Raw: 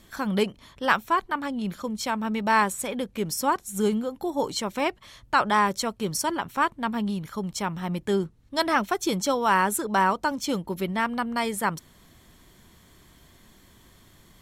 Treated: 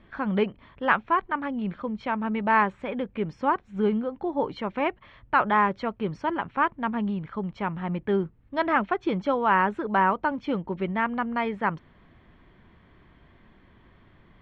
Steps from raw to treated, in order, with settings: LPF 2600 Hz 24 dB/oct

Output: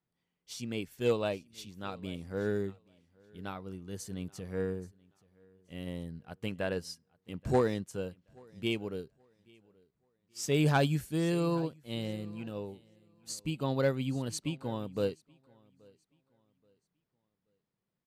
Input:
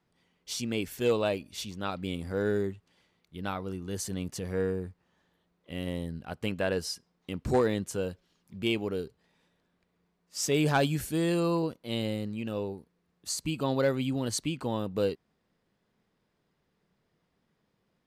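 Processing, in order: bell 140 Hz +4.5 dB 0.83 oct; on a send: feedback echo 0.829 s, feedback 32%, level -19 dB; on the sum: upward expander 1.5:1, over -46 dBFS; gain -1.5 dB

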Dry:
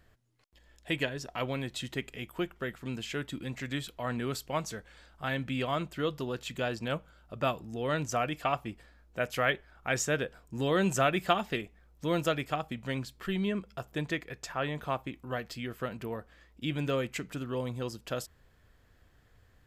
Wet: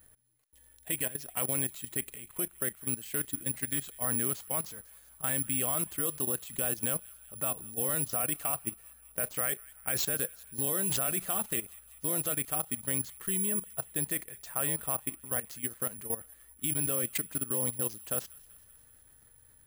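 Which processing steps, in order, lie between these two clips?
careless resampling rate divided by 4×, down none, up zero stuff; level quantiser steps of 15 dB; thin delay 0.191 s, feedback 65%, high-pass 1600 Hz, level -21 dB

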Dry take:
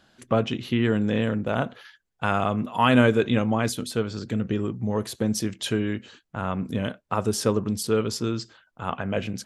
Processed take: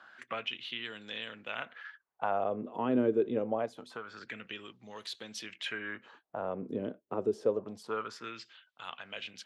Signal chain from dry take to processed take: 3.65–4.21 compressor 5:1, threshold -27 dBFS, peak gain reduction 8 dB; wah 0.25 Hz 360–3900 Hz, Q 2.6; three-band squash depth 40%

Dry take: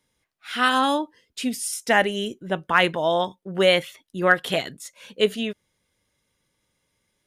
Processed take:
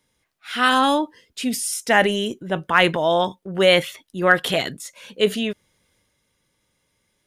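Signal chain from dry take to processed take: transient shaper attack -2 dB, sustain +4 dB; gain +3 dB

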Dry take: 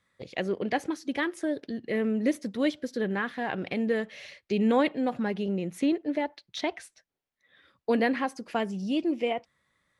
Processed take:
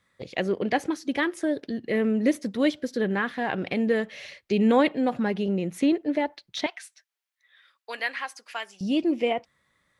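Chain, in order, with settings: 6.66–8.81 HPF 1300 Hz 12 dB/oct; gain +3.5 dB

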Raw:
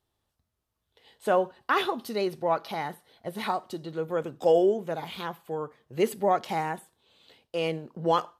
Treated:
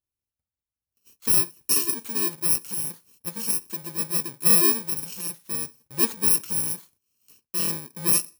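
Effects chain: FFT order left unsorted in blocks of 64 samples; gate -58 dBFS, range -14 dB; high shelf 6100 Hz +4 dB

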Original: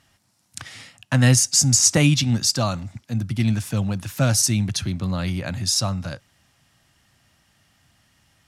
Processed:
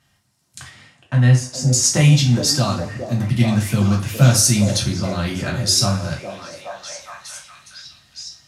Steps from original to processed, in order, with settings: 0.68–1.66 LPF 2000 Hz 6 dB/oct; vocal rider 2 s; delay with a stepping band-pass 0.415 s, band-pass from 430 Hz, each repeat 0.7 oct, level -1 dB; two-slope reverb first 0.32 s, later 1.7 s, from -22 dB, DRR -1.5 dB; gain -2 dB

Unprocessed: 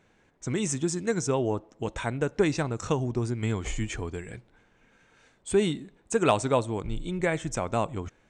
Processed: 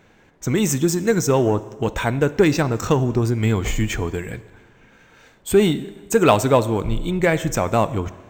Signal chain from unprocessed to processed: in parallel at -5.5 dB: soft clip -25.5 dBFS, distortion -8 dB; on the sum: plate-style reverb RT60 1.6 s, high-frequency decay 0.8×, DRR 15.5 dB; decimation joined by straight lines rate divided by 2×; gain +6.5 dB

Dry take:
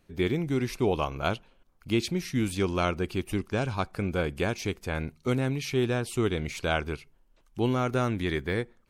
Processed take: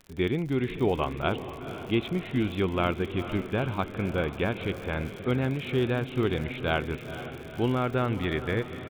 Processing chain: diffused feedback echo 0.472 s, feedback 61%, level -11 dB; downsampling 8000 Hz; crackle 98/s -36 dBFS

